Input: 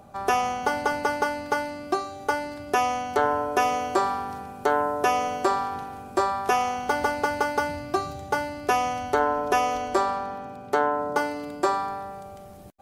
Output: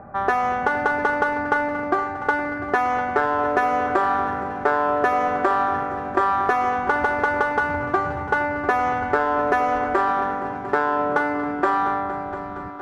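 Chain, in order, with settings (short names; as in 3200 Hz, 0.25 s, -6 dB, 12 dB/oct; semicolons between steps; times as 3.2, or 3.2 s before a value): low-pass opened by the level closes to 1900 Hz, open at -18 dBFS; resonant high shelf 2500 Hz -12 dB, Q 3; compressor, threshold -22 dBFS, peak gain reduction 7.5 dB; in parallel at -5.5 dB: soft clip -27.5 dBFS, distortion -8 dB; on the sum: multi-head echo 0.233 s, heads all three, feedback 67%, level -19 dB; gain +3.5 dB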